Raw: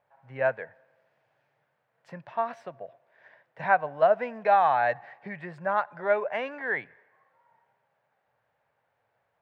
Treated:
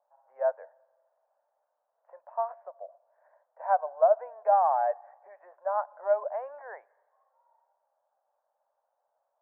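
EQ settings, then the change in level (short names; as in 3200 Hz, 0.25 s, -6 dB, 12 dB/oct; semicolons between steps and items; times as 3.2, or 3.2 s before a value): elliptic high-pass 580 Hz, stop band 80 dB; LPF 1000 Hz 24 dB/oct; 0.0 dB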